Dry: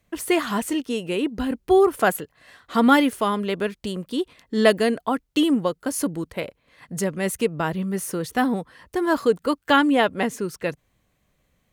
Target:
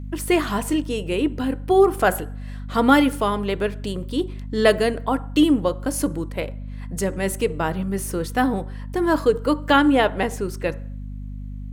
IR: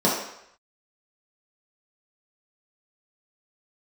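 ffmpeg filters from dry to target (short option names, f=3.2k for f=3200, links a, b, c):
-filter_complex "[0:a]asplit=2[a][b];[1:a]atrim=start_sample=2205,asetrate=61740,aresample=44100[c];[b][c]afir=irnorm=-1:irlink=0,volume=-28dB[d];[a][d]amix=inputs=2:normalize=0,aeval=exprs='val(0)+0.0282*(sin(2*PI*50*n/s)+sin(2*PI*2*50*n/s)/2+sin(2*PI*3*50*n/s)/3+sin(2*PI*4*50*n/s)/4+sin(2*PI*5*50*n/s)/5)':c=same"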